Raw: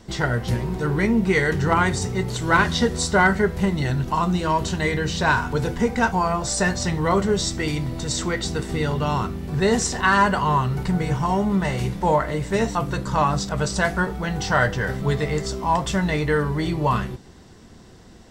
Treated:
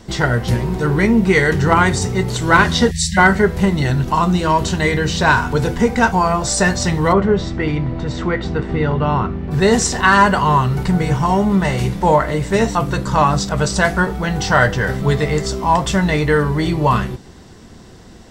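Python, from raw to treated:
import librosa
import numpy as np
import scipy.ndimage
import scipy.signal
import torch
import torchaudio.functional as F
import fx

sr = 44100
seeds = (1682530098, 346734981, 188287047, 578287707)

y = fx.spec_erase(x, sr, start_s=2.91, length_s=0.26, low_hz=210.0, high_hz=1600.0)
y = fx.lowpass(y, sr, hz=2200.0, slope=12, at=(7.12, 9.5), fade=0.02)
y = y * librosa.db_to_amplitude(6.0)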